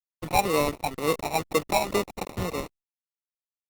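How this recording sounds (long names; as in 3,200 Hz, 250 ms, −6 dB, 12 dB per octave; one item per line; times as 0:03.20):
a quantiser's noise floor 6 bits, dither none
phaser sweep stages 8, 2.1 Hz, lowest notch 390–1,400 Hz
aliases and images of a low sample rate 1,600 Hz, jitter 0%
Opus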